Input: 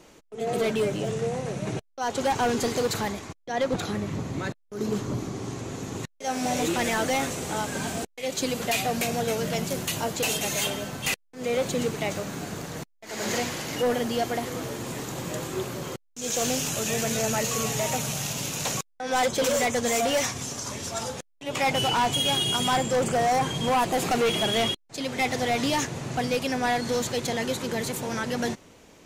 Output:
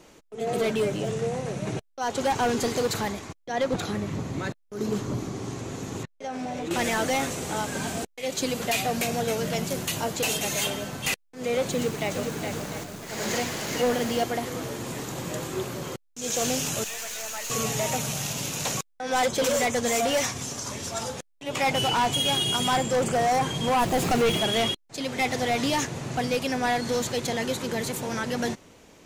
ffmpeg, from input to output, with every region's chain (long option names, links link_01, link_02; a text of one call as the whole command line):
ffmpeg -i in.wav -filter_complex "[0:a]asettb=1/sr,asplit=3[link_01][link_02][link_03];[link_01]atrim=end=6.034[link_04];[link_02]atrim=start=6.03:end=6.71,asetpts=PTS-STARTPTS,afade=type=in:duration=0.004:curve=qsin,afade=type=out:start_time=0.676:duration=0.004:curve=qsin,aemphasis=mode=reproduction:type=75fm,acompressor=threshold=-29dB:ratio=6:attack=3.2:release=140:knee=1:detection=peak[link_05];[link_03]atrim=start=6.706[link_06];[link_04][link_05]acrossfade=duration=0.004:curve1=hsin:curve2=qsin[link_07];[link_07][link_06]acrossfade=duration=0.004:curve1=qsin:curve2=hsin,asettb=1/sr,asplit=3[link_08][link_09][link_10];[link_08]atrim=end=11.724[link_11];[link_09]atrim=start=11.72:end=14.24,asetpts=PTS-STARTPTS,afade=type=in:duration=0.004:curve=qsin,afade=type=out:start_time=2.516:duration=0.004:curve=qsin,aecho=1:1:415|700:0.501|0.224,atrim=end_sample=111132,acrusher=bits=8:dc=4:mix=0:aa=0.000001[link_12];[link_10]atrim=start=14.236[link_13];[link_11][link_12]acrossfade=duration=0.004:curve1=hsin:curve2=qsin[link_14];[link_14][link_13]acrossfade=duration=0.004:curve1=qsin:curve2=hsin,asettb=1/sr,asplit=3[link_15][link_16][link_17];[link_15]atrim=end=16.844[link_18];[link_16]atrim=start=16.84:end=17.5,asetpts=PTS-STARTPTS,afade=type=in:duration=0.004:curve=qsin,afade=type=out:start_time=0.656:duration=0.004:curve=qsin,highpass=900,aeval=exprs='(tanh(28.2*val(0)+0.6)-tanh(0.6))/28.2':channel_layout=same[link_19];[link_17]atrim=start=17.496[link_20];[link_18][link_19]acrossfade=duration=0.004:curve1=hsin:curve2=qsin[link_21];[link_21][link_20]acrossfade=duration=0.004:curve1=qsin:curve2=hsin,asettb=1/sr,asplit=3[link_22][link_23][link_24];[link_22]atrim=end=23.794[link_25];[link_23]atrim=start=23.79:end=24.38,asetpts=PTS-STARTPTS,afade=type=in:duration=0.004:curve=qsin,afade=type=out:start_time=0.586:duration=0.004:curve=qsin,lowshelf=frequency=170:gain=9,aeval=exprs='val(0)*gte(abs(val(0)),0.02)':channel_layout=same[link_26];[link_24]atrim=start=24.376[link_27];[link_25][link_26]acrossfade=duration=0.004:curve1=hsin:curve2=qsin[link_28];[link_28][link_27]acrossfade=duration=0.004:curve1=qsin:curve2=hsin" out.wav